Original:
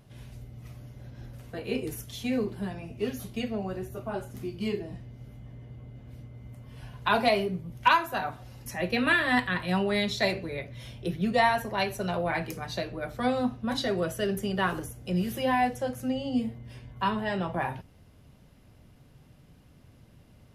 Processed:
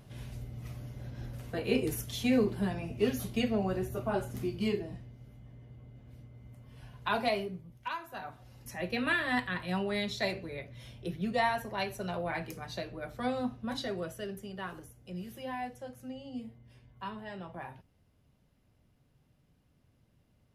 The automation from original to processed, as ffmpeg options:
ffmpeg -i in.wav -af "volume=13dB,afade=type=out:start_time=4.36:duration=0.84:silence=0.375837,afade=type=out:start_time=7.34:duration=0.54:silence=0.298538,afade=type=in:start_time=7.88:duration=0.86:silence=0.281838,afade=type=out:start_time=13.66:duration=0.79:silence=0.446684" out.wav

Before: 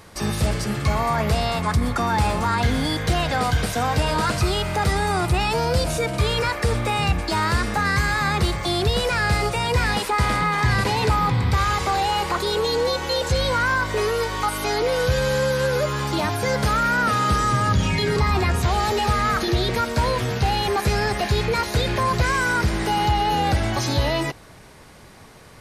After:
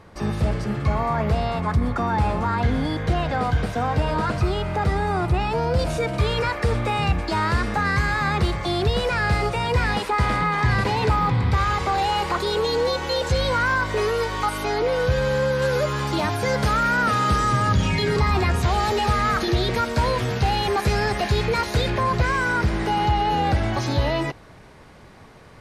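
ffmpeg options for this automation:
ffmpeg -i in.wav -af "asetnsamples=nb_out_samples=441:pad=0,asendcmd='5.79 lowpass f 3000;11.98 lowpass f 5000;14.63 lowpass f 2500;15.62 lowpass f 6400;21.9 lowpass f 2700',lowpass=frequency=1400:poles=1" out.wav

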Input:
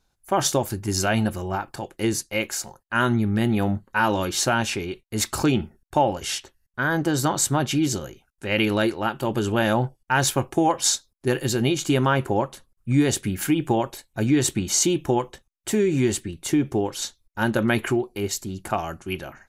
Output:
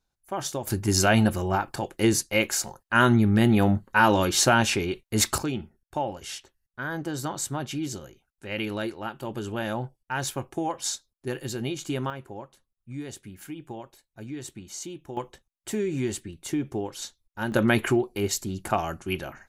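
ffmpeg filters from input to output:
ffmpeg -i in.wav -af "asetnsamples=nb_out_samples=441:pad=0,asendcmd='0.67 volume volume 2dB;5.38 volume volume -9dB;12.1 volume volume -17dB;15.17 volume volume -7dB;17.52 volume volume 0dB',volume=-9.5dB" out.wav

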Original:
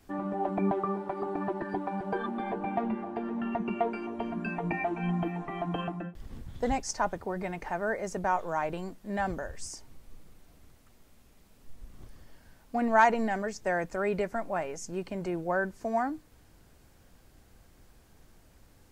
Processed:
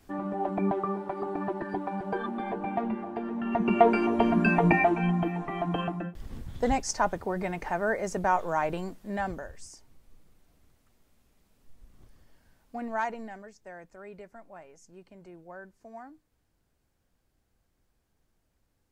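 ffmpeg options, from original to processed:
ffmpeg -i in.wav -af "volume=11dB,afade=type=in:start_time=3.44:duration=0.48:silence=0.298538,afade=type=out:start_time=4.63:duration=0.5:silence=0.398107,afade=type=out:start_time=8.76:duration=0.91:silence=0.316228,afade=type=out:start_time=12.75:duration=0.81:silence=0.354813" out.wav

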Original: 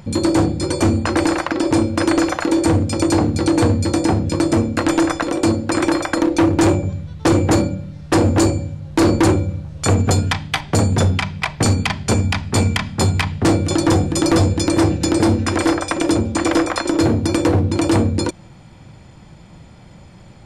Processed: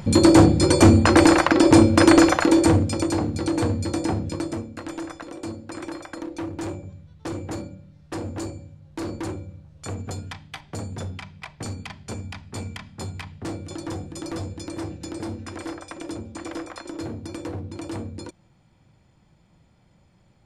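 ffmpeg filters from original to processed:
ffmpeg -i in.wav -af "volume=3dB,afade=type=out:start_time=2.15:duration=0.95:silence=0.281838,afade=type=out:start_time=4.2:duration=0.46:silence=0.354813" out.wav

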